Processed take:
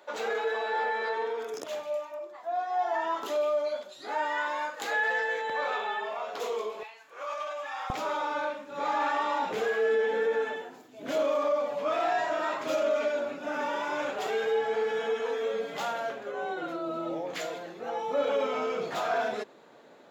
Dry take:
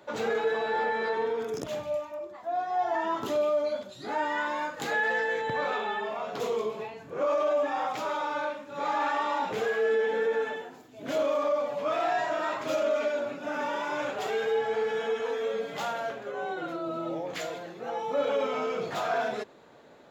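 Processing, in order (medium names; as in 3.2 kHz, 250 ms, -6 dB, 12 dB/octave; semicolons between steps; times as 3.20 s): high-pass 460 Hz 12 dB/octave, from 6.83 s 1.2 kHz, from 7.90 s 180 Hz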